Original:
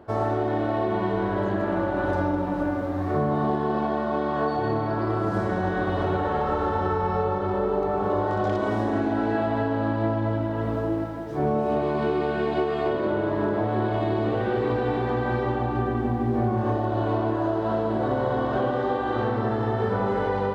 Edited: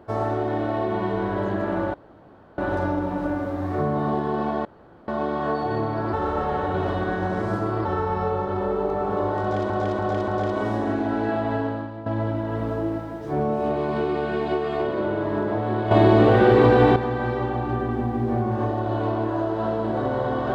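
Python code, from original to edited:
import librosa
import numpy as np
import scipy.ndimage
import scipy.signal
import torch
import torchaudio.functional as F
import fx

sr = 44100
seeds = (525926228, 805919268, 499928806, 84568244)

y = fx.edit(x, sr, fx.insert_room_tone(at_s=1.94, length_s=0.64),
    fx.insert_room_tone(at_s=4.01, length_s=0.43),
    fx.reverse_span(start_s=5.06, length_s=1.72),
    fx.repeat(start_s=8.34, length_s=0.29, count=4),
    fx.fade_out_to(start_s=9.71, length_s=0.41, curve='qua', floor_db=-13.0),
    fx.clip_gain(start_s=13.97, length_s=1.05, db=9.5), tone=tone)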